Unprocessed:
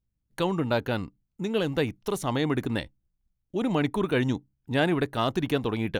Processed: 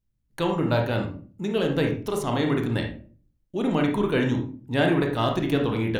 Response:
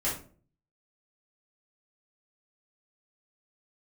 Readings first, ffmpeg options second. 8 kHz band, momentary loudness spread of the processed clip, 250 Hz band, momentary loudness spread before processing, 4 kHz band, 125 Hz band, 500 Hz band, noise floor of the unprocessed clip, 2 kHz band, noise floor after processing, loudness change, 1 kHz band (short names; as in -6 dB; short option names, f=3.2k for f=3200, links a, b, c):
0.0 dB, 7 LU, +3.0 dB, 9 LU, +1.0 dB, +4.0 dB, +2.5 dB, -79 dBFS, +2.0 dB, -72 dBFS, +2.5 dB, +2.0 dB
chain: -filter_complex "[0:a]asplit=2[a][b];[1:a]atrim=start_sample=2205,lowpass=4.8k,adelay=24[c];[b][c]afir=irnorm=-1:irlink=0,volume=-9dB[d];[a][d]amix=inputs=2:normalize=0"